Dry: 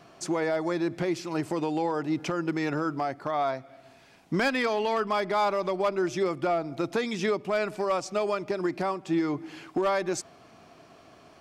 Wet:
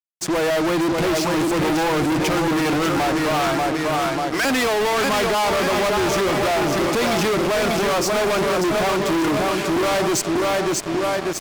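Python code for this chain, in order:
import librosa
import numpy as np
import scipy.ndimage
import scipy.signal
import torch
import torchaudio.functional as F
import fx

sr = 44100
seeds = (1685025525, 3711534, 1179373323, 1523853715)

y = fx.fade_in_head(x, sr, length_s=0.56)
y = fx.highpass(y, sr, hz=890.0, slope=12, at=(3.36, 4.45))
y = fx.echo_feedback(y, sr, ms=590, feedback_pct=50, wet_db=-6)
y = fx.fuzz(y, sr, gain_db=41.0, gate_db=-47.0)
y = y * librosa.db_to_amplitude(-5.0)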